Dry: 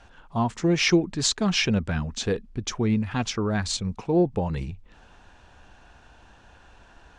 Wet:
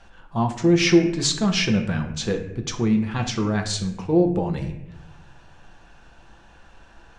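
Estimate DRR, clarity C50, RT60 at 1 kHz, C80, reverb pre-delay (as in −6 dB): 3.5 dB, 8.5 dB, 0.75 s, 11.0 dB, 5 ms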